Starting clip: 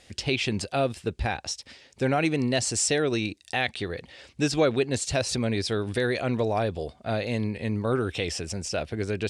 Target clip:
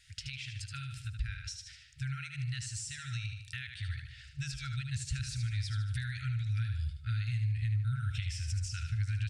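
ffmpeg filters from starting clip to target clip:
-filter_complex "[0:a]asplit=2[a][b];[b]aecho=0:1:75|150|225|300|375:0.422|0.169|0.0675|0.027|0.0108[c];[a][c]amix=inputs=2:normalize=0,afftfilt=real='re*(1-between(b*sr/4096,140,1300))':imag='im*(1-between(b*sr/4096,140,1300))':win_size=4096:overlap=0.75,acompressor=threshold=-33dB:ratio=6,asubboost=boost=6:cutoff=140,volume=-6.5dB"

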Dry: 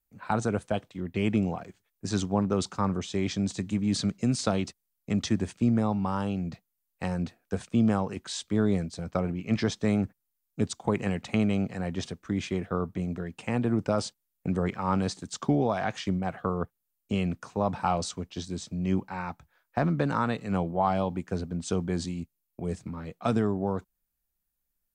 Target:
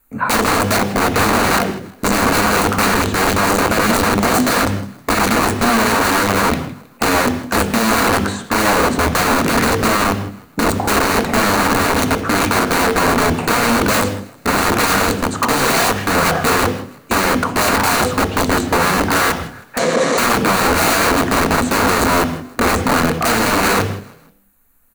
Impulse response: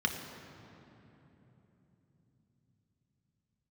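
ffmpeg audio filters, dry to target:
-filter_complex "[0:a]equalizer=f=5.1k:t=o:w=0.58:g=-11,bandreject=f=50:t=h:w=6,bandreject=f=100:t=h:w=6,bandreject=f=150:t=h:w=6,bandreject=f=200:t=h:w=6,bandreject=f=250:t=h:w=6,bandreject=f=300:t=h:w=6,bandreject=f=350:t=h:w=6,bandreject=f=400:t=h:w=6,bandreject=f=450:t=h:w=6,bandreject=f=500:t=h:w=6,acrossover=split=1300[a][b];[b]acompressor=threshold=-54dB:ratio=8[c];[a][c]amix=inputs=2:normalize=0,asoftclip=type=hard:threshold=-30dB,flanger=delay=6.5:depth=10:regen=-71:speed=0.7:shape=sinusoidal,aeval=exprs='(mod(89.1*val(0)+1,2)-1)/89.1':c=same,asettb=1/sr,asplit=3[d][e][f];[d]atrim=end=19.784[g];[e]atrim=start=19.78:end=20.18,asetpts=PTS-STARTPTS,afade=t=in:d=0.004:c=qsin,afade=t=out:st=0.396:d=0.004:c=qsin,highpass=f=150:w=0.5412,highpass=f=150:w=1.3066,equalizer=f=510:t=q:w=4:g=8,equalizer=f=890:t=q:w=4:g=-7,equalizer=f=1.4k:t=q:w=4:g=-9,equalizer=f=2.6k:t=q:w=4:g=-8,equalizer=f=4.7k:t=q:w=4:g=-6,lowpass=f=7.7k:w=0.5412,lowpass=f=7.7k:w=1.3066[h];[f]atrim=start=20.176[i];[g][h]acrossfade=d=0.004:c1=hsin:c2=qsin[j];[j][i]acrossfade=d=0.004:c1=qsin:c2=hsin,asplit=4[k][l][m][n];[l]adelay=159,afreqshift=32,volume=-21.5dB[o];[m]adelay=318,afreqshift=64,volume=-29.5dB[p];[n]adelay=477,afreqshift=96,volume=-37.4dB[q];[k][o][p][q]amix=inputs=4:normalize=0,asplit=2[r][s];[1:a]atrim=start_sample=2205,afade=t=out:st=0.24:d=0.01,atrim=end_sample=11025[t];[s][t]afir=irnorm=-1:irlink=0,volume=-10.5dB[u];[r][u]amix=inputs=2:normalize=0,alimiter=level_in=34.5dB:limit=-1dB:release=50:level=0:latency=1,volume=-4.5dB"

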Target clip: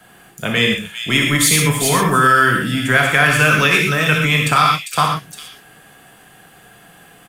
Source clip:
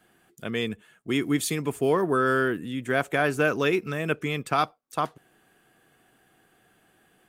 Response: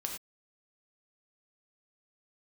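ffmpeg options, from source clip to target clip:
-filter_complex "[0:a]equalizer=f=340:w=2.4:g=-7.5,acrossover=split=240|1100|2400[a][b][c][d];[a]asoftclip=type=tanh:threshold=-35.5dB[e];[b]acompressor=threshold=-41dB:ratio=6[f];[d]aecho=1:1:61|399:0.376|0.531[g];[e][f][c][g]amix=inputs=4:normalize=0[h];[1:a]atrim=start_sample=2205,asetrate=37044,aresample=44100[i];[h][i]afir=irnorm=-1:irlink=0,alimiter=level_in=16.5dB:limit=-1dB:release=50:level=0:latency=1,volume=-1dB"

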